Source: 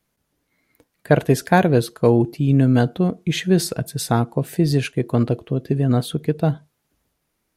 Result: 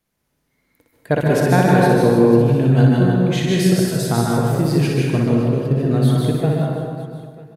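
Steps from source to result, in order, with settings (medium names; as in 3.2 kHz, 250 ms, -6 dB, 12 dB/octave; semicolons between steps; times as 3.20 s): on a send: reverse bouncing-ball echo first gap 60 ms, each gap 1.6×, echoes 5; on the sum: plate-style reverb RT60 1.4 s, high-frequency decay 0.55×, pre-delay 120 ms, DRR -2 dB; trim -3.5 dB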